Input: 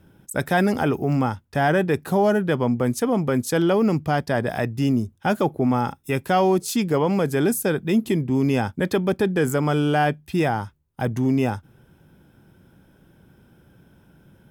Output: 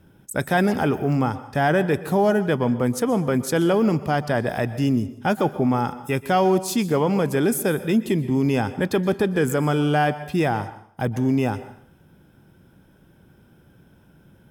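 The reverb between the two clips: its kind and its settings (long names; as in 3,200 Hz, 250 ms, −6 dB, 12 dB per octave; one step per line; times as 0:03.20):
dense smooth reverb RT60 0.61 s, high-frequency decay 0.9×, pre-delay 110 ms, DRR 14 dB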